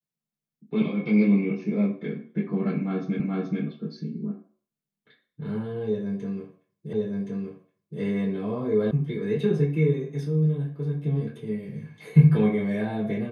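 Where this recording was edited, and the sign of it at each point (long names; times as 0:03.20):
0:03.20: the same again, the last 0.43 s
0:06.93: the same again, the last 1.07 s
0:08.91: cut off before it has died away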